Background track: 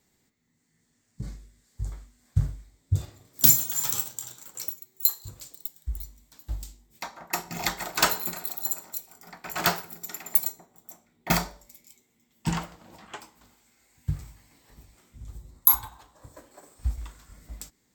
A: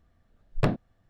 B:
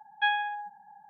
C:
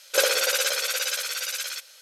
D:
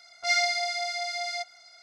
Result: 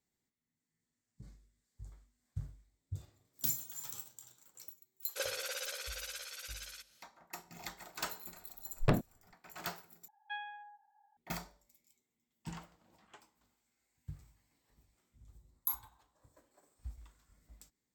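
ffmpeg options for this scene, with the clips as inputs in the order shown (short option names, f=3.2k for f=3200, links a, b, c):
-filter_complex "[0:a]volume=-17.5dB[a];[2:a]highpass=f=340:w=0.5412,highpass=f=340:w=1.3066[b];[a]asplit=2[c][d];[c]atrim=end=10.084[e];[b]atrim=end=1.09,asetpts=PTS-STARTPTS,volume=-16.5dB[f];[d]atrim=start=11.166[g];[3:a]atrim=end=2.01,asetpts=PTS-STARTPTS,volume=-17dB,afade=t=in:d=0.004:c=hsin,afade=t=out:st=2.006:d=0.004:c=hsin,adelay=5020[h];[1:a]atrim=end=1.09,asetpts=PTS-STARTPTS,volume=-4.5dB,afade=t=in:d=0.004:c=hsin,afade=t=out:st=1.086:d=0.004:c=hsin,adelay=8250[i];[e][f]acrossfade=d=0.004:c1=hsin:c2=hsin[j];[j][g]acrossfade=d=0.004:c1=hsin:c2=hsin[k];[k][h][i]amix=inputs=3:normalize=0"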